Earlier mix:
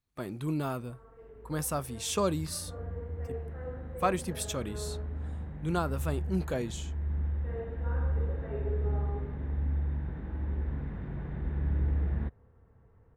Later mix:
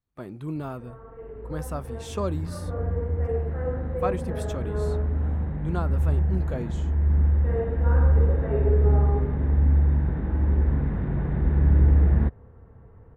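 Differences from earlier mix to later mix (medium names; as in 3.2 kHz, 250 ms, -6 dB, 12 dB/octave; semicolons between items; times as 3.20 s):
background +11.5 dB; master: add treble shelf 2.7 kHz -11 dB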